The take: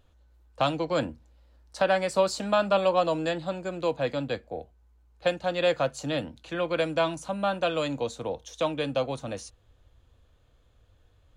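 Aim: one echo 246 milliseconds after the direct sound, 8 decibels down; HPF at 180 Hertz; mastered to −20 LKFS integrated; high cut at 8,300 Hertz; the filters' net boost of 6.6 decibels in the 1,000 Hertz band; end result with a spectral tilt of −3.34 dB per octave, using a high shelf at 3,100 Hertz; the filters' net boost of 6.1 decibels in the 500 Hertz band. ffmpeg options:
ffmpeg -i in.wav -af "highpass=180,lowpass=8300,equalizer=frequency=500:width_type=o:gain=5,equalizer=frequency=1000:width_type=o:gain=7.5,highshelf=frequency=3100:gain=-5.5,aecho=1:1:246:0.398,volume=2.5dB" out.wav

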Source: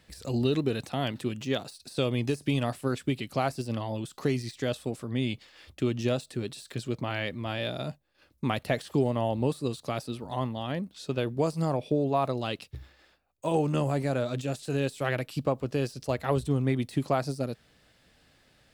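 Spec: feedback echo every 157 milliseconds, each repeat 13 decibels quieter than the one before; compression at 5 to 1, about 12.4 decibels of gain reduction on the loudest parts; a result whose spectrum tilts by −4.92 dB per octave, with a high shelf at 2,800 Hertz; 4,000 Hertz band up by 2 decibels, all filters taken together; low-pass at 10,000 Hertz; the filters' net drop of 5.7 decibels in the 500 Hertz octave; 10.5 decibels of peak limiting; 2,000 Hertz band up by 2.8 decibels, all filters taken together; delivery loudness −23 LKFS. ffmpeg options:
ffmpeg -i in.wav -af "lowpass=10000,equalizer=frequency=500:width_type=o:gain=-7.5,equalizer=frequency=2000:width_type=o:gain=5,highshelf=frequency=2800:gain=-5.5,equalizer=frequency=4000:width_type=o:gain=5,acompressor=threshold=-38dB:ratio=5,alimiter=level_in=9dB:limit=-24dB:level=0:latency=1,volume=-9dB,aecho=1:1:157|314|471:0.224|0.0493|0.0108,volume=22dB" out.wav

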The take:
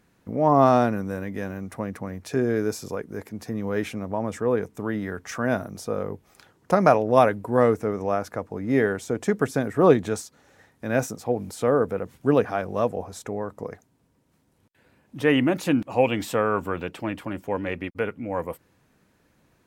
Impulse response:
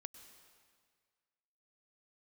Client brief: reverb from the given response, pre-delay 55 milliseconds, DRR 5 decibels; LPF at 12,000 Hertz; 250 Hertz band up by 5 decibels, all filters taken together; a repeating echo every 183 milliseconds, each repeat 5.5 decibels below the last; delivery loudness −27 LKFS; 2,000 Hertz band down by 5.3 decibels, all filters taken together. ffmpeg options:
-filter_complex "[0:a]lowpass=12000,equalizer=frequency=250:width_type=o:gain=6,equalizer=frequency=2000:width_type=o:gain=-7.5,aecho=1:1:183|366|549|732|915|1098|1281:0.531|0.281|0.149|0.079|0.0419|0.0222|0.0118,asplit=2[link_01][link_02];[1:a]atrim=start_sample=2205,adelay=55[link_03];[link_02][link_03]afir=irnorm=-1:irlink=0,volume=0.5dB[link_04];[link_01][link_04]amix=inputs=2:normalize=0,volume=-7dB"

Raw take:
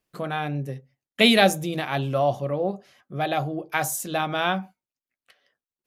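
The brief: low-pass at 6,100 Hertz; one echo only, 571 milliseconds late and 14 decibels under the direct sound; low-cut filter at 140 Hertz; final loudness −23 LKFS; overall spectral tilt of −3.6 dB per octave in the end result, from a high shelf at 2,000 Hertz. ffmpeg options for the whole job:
ffmpeg -i in.wav -af "highpass=140,lowpass=6100,highshelf=frequency=2000:gain=-5.5,aecho=1:1:571:0.2,volume=2.5dB" out.wav

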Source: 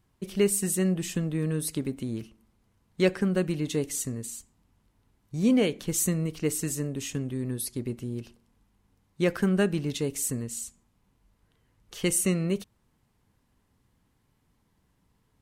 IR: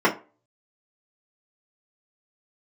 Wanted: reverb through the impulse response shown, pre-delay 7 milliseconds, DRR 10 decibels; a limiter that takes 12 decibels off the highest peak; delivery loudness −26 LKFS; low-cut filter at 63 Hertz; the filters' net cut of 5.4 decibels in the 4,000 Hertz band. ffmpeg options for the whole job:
-filter_complex "[0:a]highpass=63,equalizer=frequency=4000:width_type=o:gain=-8,alimiter=limit=-23dB:level=0:latency=1,asplit=2[link_01][link_02];[1:a]atrim=start_sample=2205,adelay=7[link_03];[link_02][link_03]afir=irnorm=-1:irlink=0,volume=-29dB[link_04];[link_01][link_04]amix=inputs=2:normalize=0,volume=6.5dB"

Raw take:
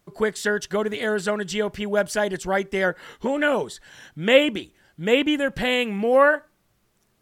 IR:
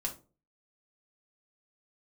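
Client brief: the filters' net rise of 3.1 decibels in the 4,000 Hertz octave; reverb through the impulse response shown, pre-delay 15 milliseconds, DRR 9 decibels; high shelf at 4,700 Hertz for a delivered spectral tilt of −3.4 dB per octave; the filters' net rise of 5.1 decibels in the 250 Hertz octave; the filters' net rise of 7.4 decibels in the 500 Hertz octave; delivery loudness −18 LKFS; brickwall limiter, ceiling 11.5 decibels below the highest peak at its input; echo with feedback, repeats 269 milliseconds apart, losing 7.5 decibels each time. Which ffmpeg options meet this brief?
-filter_complex "[0:a]equalizer=frequency=250:width_type=o:gain=4,equalizer=frequency=500:width_type=o:gain=7.5,equalizer=frequency=4000:width_type=o:gain=6.5,highshelf=frequency=4700:gain=-4.5,alimiter=limit=-8.5dB:level=0:latency=1,aecho=1:1:269|538|807|1076|1345:0.422|0.177|0.0744|0.0312|0.0131,asplit=2[link_01][link_02];[1:a]atrim=start_sample=2205,adelay=15[link_03];[link_02][link_03]afir=irnorm=-1:irlink=0,volume=-10.5dB[link_04];[link_01][link_04]amix=inputs=2:normalize=0,volume=0.5dB"

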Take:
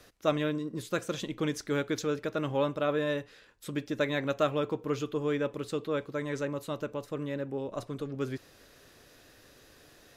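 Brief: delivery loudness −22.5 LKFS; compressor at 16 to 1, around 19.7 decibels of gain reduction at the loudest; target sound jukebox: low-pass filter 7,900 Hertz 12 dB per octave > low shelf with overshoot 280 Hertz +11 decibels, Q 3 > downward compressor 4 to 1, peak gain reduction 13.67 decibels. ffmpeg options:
ffmpeg -i in.wav -af "acompressor=threshold=-41dB:ratio=16,lowpass=7900,lowshelf=frequency=280:width_type=q:width=3:gain=11,acompressor=threshold=-42dB:ratio=4,volume=24.5dB" out.wav

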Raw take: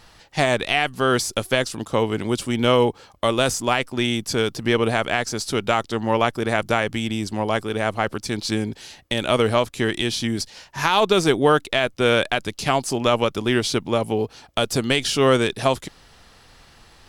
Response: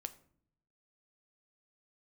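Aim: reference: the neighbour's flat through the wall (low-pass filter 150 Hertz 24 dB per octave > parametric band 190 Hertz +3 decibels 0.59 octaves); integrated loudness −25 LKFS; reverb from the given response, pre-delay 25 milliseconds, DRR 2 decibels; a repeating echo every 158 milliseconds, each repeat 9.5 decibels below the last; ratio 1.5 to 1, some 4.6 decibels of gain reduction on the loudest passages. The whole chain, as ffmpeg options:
-filter_complex "[0:a]acompressor=threshold=-25dB:ratio=1.5,aecho=1:1:158|316|474|632:0.335|0.111|0.0365|0.012,asplit=2[link_01][link_02];[1:a]atrim=start_sample=2205,adelay=25[link_03];[link_02][link_03]afir=irnorm=-1:irlink=0,volume=1dB[link_04];[link_01][link_04]amix=inputs=2:normalize=0,lowpass=frequency=150:width=0.5412,lowpass=frequency=150:width=1.3066,equalizer=frequency=190:width_type=o:width=0.59:gain=3,volume=9dB"

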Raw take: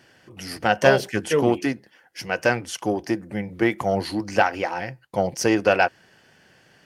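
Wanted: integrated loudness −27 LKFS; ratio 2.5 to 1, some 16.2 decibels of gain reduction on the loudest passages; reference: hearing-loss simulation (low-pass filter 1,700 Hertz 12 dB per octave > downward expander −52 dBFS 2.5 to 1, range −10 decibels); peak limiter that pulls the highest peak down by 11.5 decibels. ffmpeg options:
ffmpeg -i in.wav -af "acompressor=threshold=-37dB:ratio=2.5,alimiter=level_in=4.5dB:limit=-24dB:level=0:latency=1,volume=-4.5dB,lowpass=1700,agate=range=-10dB:threshold=-52dB:ratio=2.5,volume=14.5dB" out.wav

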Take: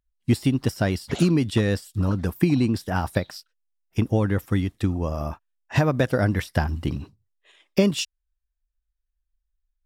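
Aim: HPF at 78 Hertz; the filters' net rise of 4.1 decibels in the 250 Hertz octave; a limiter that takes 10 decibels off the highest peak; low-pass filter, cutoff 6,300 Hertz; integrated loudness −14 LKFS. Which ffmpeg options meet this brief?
ffmpeg -i in.wav -af "highpass=78,lowpass=6300,equalizer=frequency=250:width_type=o:gain=5.5,volume=10.5dB,alimiter=limit=-1.5dB:level=0:latency=1" out.wav

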